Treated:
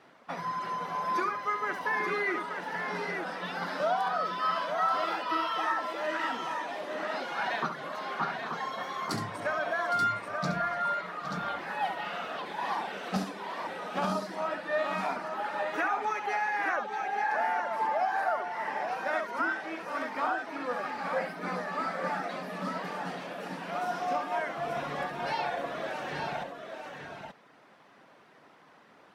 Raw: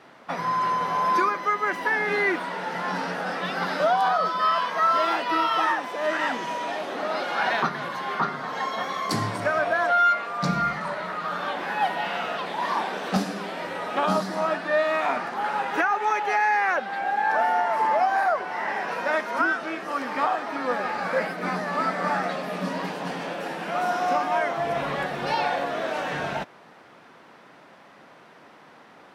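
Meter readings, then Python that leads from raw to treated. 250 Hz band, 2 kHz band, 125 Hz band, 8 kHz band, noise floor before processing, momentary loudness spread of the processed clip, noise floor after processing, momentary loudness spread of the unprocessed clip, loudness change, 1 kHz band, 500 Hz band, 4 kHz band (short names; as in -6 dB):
-7.0 dB, -6.5 dB, -7.0 dB, -7.0 dB, -51 dBFS, 7 LU, -58 dBFS, 8 LU, -7.0 dB, -7.0 dB, -7.0 dB, -7.0 dB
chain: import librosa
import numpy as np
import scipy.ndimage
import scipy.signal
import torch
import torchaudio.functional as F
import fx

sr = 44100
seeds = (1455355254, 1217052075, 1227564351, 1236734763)

y = fx.dereverb_blind(x, sr, rt60_s=0.75)
y = fx.echo_multitap(y, sr, ms=(68, 812, 882), db=(-8.5, -12.5, -6.0))
y = F.gain(torch.from_numpy(y), -7.0).numpy()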